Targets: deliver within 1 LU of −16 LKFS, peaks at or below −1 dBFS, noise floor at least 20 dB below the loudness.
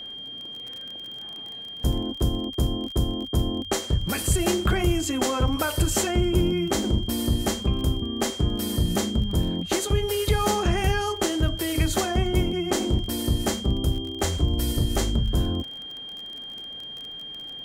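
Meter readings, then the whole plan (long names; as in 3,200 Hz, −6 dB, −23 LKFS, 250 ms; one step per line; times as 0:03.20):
crackle rate 26 per second; interfering tone 3,200 Hz; level of the tone −35 dBFS; integrated loudness −26.0 LKFS; sample peak −9.5 dBFS; target loudness −16.0 LKFS
→ click removal
notch filter 3,200 Hz, Q 30
level +10 dB
brickwall limiter −1 dBFS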